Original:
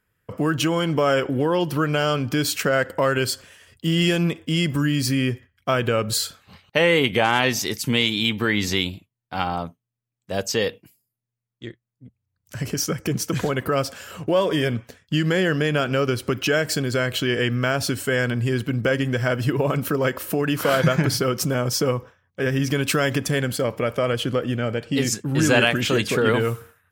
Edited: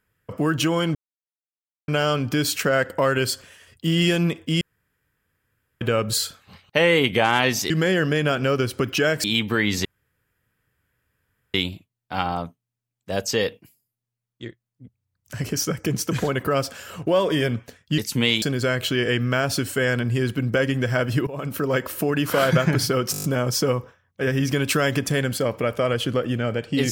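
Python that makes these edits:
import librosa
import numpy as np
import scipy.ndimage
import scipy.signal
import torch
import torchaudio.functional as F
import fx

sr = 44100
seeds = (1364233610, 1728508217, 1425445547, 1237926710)

y = fx.edit(x, sr, fx.silence(start_s=0.95, length_s=0.93),
    fx.room_tone_fill(start_s=4.61, length_s=1.2),
    fx.swap(start_s=7.7, length_s=0.44, other_s=15.19, other_length_s=1.54),
    fx.insert_room_tone(at_s=8.75, length_s=1.69),
    fx.fade_in_from(start_s=19.58, length_s=0.62, curve='qsin', floor_db=-17.5),
    fx.stutter(start_s=21.43, slice_s=0.02, count=7), tone=tone)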